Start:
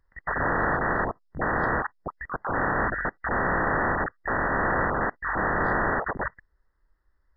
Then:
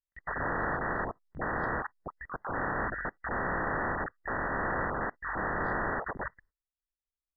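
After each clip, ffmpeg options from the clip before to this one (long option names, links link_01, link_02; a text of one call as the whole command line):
ffmpeg -i in.wav -af "agate=range=-25dB:threshold=-55dB:ratio=16:detection=peak,volume=-7dB" out.wav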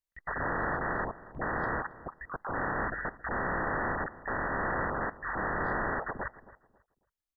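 ffmpeg -i in.wav -filter_complex "[0:a]asplit=2[link_01][link_02];[link_02]adelay=272,lowpass=frequency=1400:poles=1,volume=-16.5dB,asplit=2[link_03][link_04];[link_04]adelay=272,lowpass=frequency=1400:poles=1,volume=0.28,asplit=2[link_05][link_06];[link_06]adelay=272,lowpass=frequency=1400:poles=1,volume=0.28[link_07];[link_01][link_03][link_05][link_07]amix=inputs=4:normalize=0" out.wav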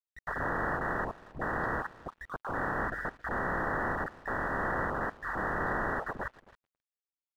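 ffmpeg -i in.wav -af "aeval=exprs='sgn(val(0))*max(abs(val(0))-0.00133,0)':channel_layout=same" out.wav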